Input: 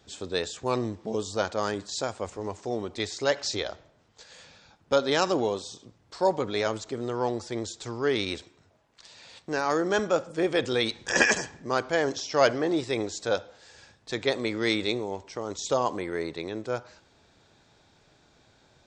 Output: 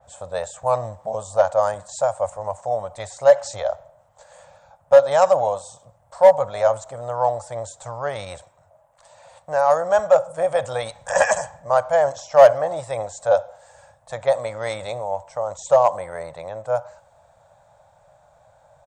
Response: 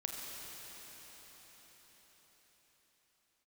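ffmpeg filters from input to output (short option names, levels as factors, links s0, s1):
-filter_complex "[0:a]firequalizer=gain_entry='entry(140,0);entry(250,-19);entry(390,-21);entry(560,13);entry(1400,-1);entry(2400,-10);entry(4900,-15);entry(8500,5)':delay=0.05:min_phase=1,asplit=2[s0][s1];[s1]asoftclip=type=hard:threshold=0.299,volume=0.596[s2];[s0][s2]amix=inputs=2:normalize=0,adynamicequalizer=threshold=0.0251:dfrequency=3200:dqfactor=0.7:tfrequency=3200:tqfactor=0.7:attack=5:release=100:ratio=0.375:range=2:mode=boostabove:tftype=highshelf,volume=0.841"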